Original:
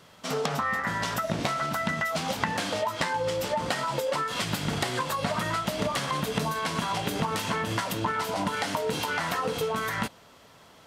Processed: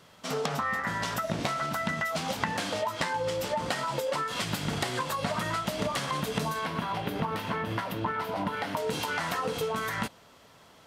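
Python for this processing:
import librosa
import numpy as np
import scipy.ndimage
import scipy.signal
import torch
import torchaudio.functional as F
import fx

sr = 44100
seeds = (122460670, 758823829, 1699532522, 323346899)

y = fx.peak_eq(x, sr, hz=7400.0, db=-15.0, octaves=1.4, at=(6.65, 8.77))
y = F.gain(torch.from_numpy(y), -2.0).numpy()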